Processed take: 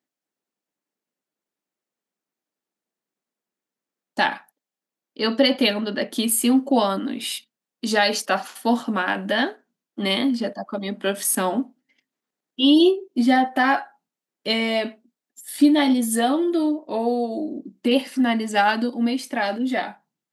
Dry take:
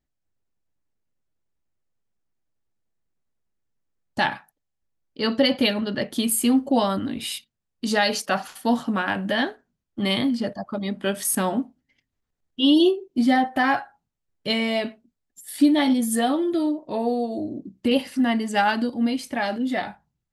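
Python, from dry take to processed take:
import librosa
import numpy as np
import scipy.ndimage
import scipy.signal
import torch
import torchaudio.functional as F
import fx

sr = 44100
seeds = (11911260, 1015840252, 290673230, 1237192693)

y = scipy.signal.sosfilt(scipy.signal.butter(4, 210.0, 'highpass', fs=sr, output='sos'), x)
y = y * 10.0 ** (2.0 / 20.0)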